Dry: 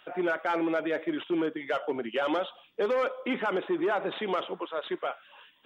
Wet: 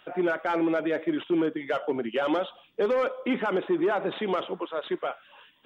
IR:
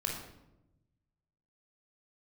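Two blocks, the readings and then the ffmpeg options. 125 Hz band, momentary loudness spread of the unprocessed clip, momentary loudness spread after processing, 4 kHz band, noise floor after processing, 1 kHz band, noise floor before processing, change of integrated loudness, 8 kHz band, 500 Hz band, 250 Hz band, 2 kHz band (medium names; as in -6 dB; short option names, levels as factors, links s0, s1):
+5.5 dB, 6 LU, 7 LU, 0.0 dB, -58 dBFS, +1.0 dB, -59 dBFS, +2.5 dB, no reading, +2.5 dB, +4.0 dB, +0.5 dB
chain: -af "lowshelf=f=380:g=6.5"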